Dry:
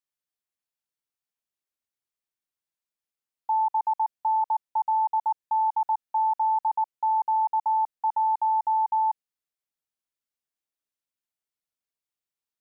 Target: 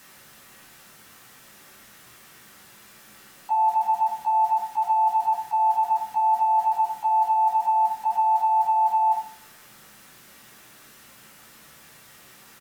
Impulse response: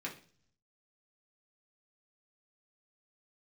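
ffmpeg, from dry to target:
-filter_complex "[0:a]aeval=exprs='val(0)+0.5*0.0106*sgn(val(0))':c=same,asplit=3[a][b][c];[b]asetrate=35002,aresample=44100,atempo=1.25992,volume=-16dB[d];[c]asetrate=37084,aresample=44100,atempo=1.18921,volume=-16dB[e];[a][d][e]amix=inputs=3:normalize=0[f];[1:a]atrim=start_sample=2205,asetrate=32634,aresample=44100[g];[f][g]afir=irnorm=-1:irlink=0"

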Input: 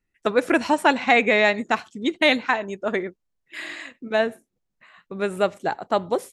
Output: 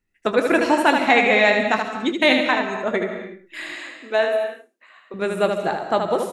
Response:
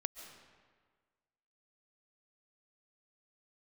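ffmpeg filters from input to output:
-filter_complex "[0:a]asettb=1/sr,asplit=3[a][b][c];[a]atrim=end=3.754[d];[b]atrim=start=3.75:end=5.14,asetpts=PTS-STARTPTS,afade=t=in:d=0.004:c=qsin,afade=t=out:st=1.386:d=0.004:c=qsin,highpass=f=310:w=0.5412,highpass=f=310:w=1.3066[e];[c]atrim=start=5.136[f];[d][e]acrossfade=d=0.004:c1=hsin:c2=qsin[g];[g][f]acrossfade=d=0.004:c1=qsin:c2=hsin,aecho=1:1:23|77:0.251|0.531[h];[1:a]atrim=start_sample=2205,afade=t=out:st=0.36:d=0.01,atrim=end_sample=16317[i];[h][i]afir=irnorm=-1:irlink=0,volume=2.5dB"

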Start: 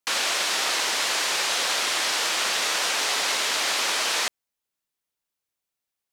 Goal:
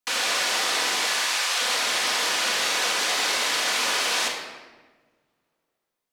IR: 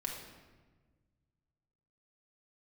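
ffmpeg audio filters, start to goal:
-filter_complex "[0:a]asettb=1/sr,asplit=3[a][b][c];[a]atrim=end=1.064[d];[b]atrim=start=1.06:end=1.61,asetpts=PTS-STARTPTS,afade=t=in:d=0.004:c=qsin,afade=t=out:st=0.546:d=0.004:c=qsin,highpass=770[e];[c]atrim=start=1.606[f];[d][e]acrossfade=d=0.004:c1=hsin:c2=qsin[g];[g][f]acrossfade=d=0.004:c1=qsin:c2=hsin[h];[1:a]atrim=start_sample=2205[i];[h][i]afir=irnorm=-1:irlink=0"

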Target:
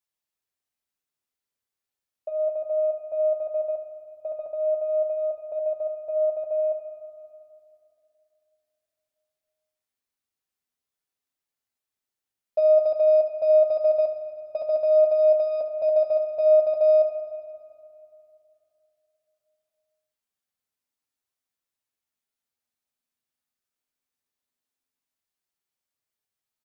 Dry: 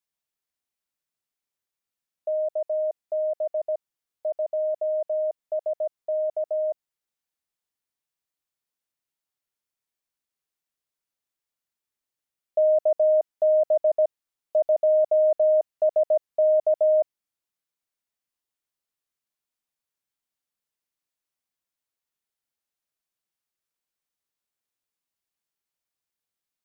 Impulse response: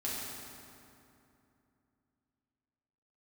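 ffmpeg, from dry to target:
-filter_complex "[0:a]aeval=exprs='0.178*(cos(1*acos(clip(val(0)/0.178,-1,1)))-cos(1*PI/2))+0.00251*(cos(6*acos(clip(val(0)/0.178,-1,1)))-cos(6*PI/2))+0.002*(cos(8*acos(clip(val(0)/0.178,-1,1)))-cos(8*PI/2))':c=same,aecho=1:1:71:0.251,asplit=2[a][b];[1:a]atrim=start_sample=2205[c];[b][c]afir=irnorm=-1:irlink=0,volume=-6.5dB[d];[a][d]amix=inputs=2:normalize=0,flanger=delay=9.3:depth=3.7:regen=-41:speed=0.15:shape=sinusoidal"

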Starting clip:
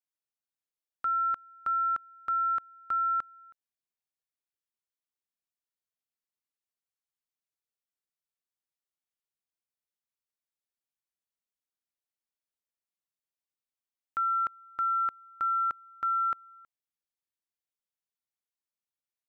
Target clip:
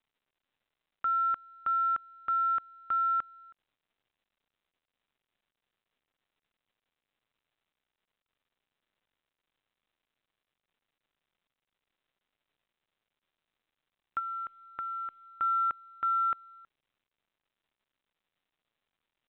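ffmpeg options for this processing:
-filter_complex "[0:a]asplit=3[a][b][c];[a]afade=t=out:st=14.18:d=0.02[d];[b]acompressor=threshold=-36dB:ratio=6,afade=t=in:st=14.18:d=0.02,afade=t=out:st=15.25:d=0.02[e];[c]afade=t=in:st=15.25:d=0.02[f];[d][e][f]amix=inputs=3:normalize=0" -ar 8000 -c:a pcm_mulaw

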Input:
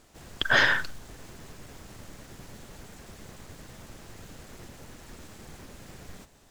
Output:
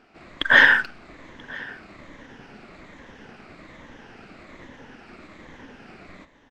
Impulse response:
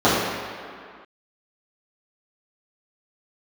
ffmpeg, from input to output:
-filter_complex "[0:a]afftfilt=real='re*pow(10,7/40*sin(2*PI*(1.1*log(max(b,1)*sr/1024/100)/log(2)-(-1.2)*(pts-256)/sr)))':imag='im*pow(10,7/40*sin(2*PI*(1.1*log(max(b,1)*sr/1024/100)/log(2)-(-1.2)*(pts-256)/sr)))':win_size=1024:overlap=0.75,firequalizer=gain_entry='entry(110,0);entry(260,12);entry(390,8);entry(2100,14);entry(3300,7);entry(10000,-9)':delay=0.05:min_phase=1,adynamicsmooth=sensitivity=7.5:basefreq=5.6k,asplit=2[a][b];[b]aecho=0:1:984:0.075[c];[a][c]amix=inputs=2:normalize=0,volume=-6dB"

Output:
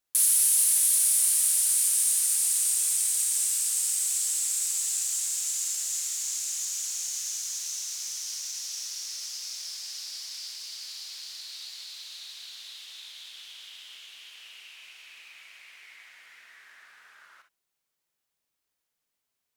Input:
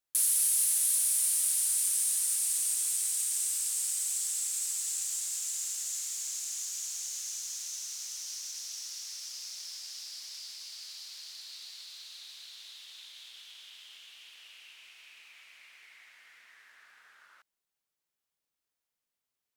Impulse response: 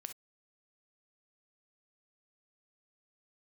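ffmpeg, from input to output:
-filter_complex "[1:a]atrim=start_sample=2205[a];[0:a][a]afir=irnorm=-1:irlink=0,volume=9dB"

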